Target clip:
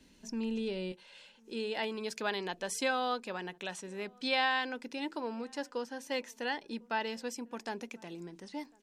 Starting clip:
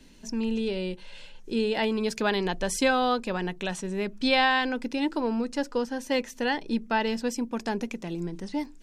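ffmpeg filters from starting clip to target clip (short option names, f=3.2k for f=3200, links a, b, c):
-filter_complex "[0:a]asetnsamples=n=441:p=0,asendcmd='0.92 highpass f 440',highpass=f=55:p=1,asplit=2[a][b];[b]adelay=1050,volume=-28dB,highshelf=f=4k:g=-23.6[c];[a][c]amix=inputs=2:normalize=0,volume=-6.5dB"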